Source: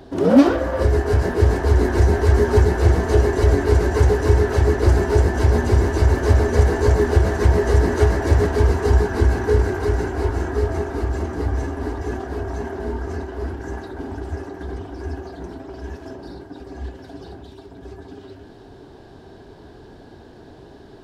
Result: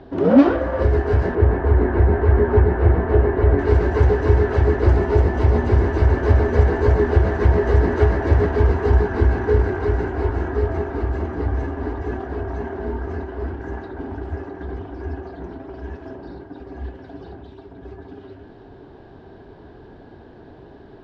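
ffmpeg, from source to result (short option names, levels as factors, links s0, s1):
-filter_complex "[0:a]asettb=1/sr,asplit=3[s0][s1][s2];[s0]atrim=end=1.354[s3];[s1]atrim=start=1.35:end=3.59,asetpts=PTS-STARTPTS,afade=t=in:d=0.004:c=qsin,afade=t=out:st=2.236:d=0.004:c=qsin,lowpass=2100[s4];[s2]atrim=start=3.586[s5];[s3][s4]acrossfade=d=0.004:c1=hsin:c2=qsin[s6];[s6][s5]acrossfade=d=0.004:c1=qsin:c2=hsin,asettb=1/sr,asplit=3[s7][s8][s9];[s7]atrim=end=4.934[s10];[s8]atrim=start=4.93:end=5.67,asetpts=PTS-STARTPTS,afade=t=in:d=0.004:c=qsin,afade=t=out:st=0.736:d=0.004:c=qsin,bandreject=f=1600:w=12[s11];[s9]atrim=start=5.666[s12];[s10][s11]acrossfade=d=0.004:c1=hsin:c2=qsin[s13];[s13][s12]acrossfade=d=0.004:c1=qsin:c2=hsin,lowpass=2700"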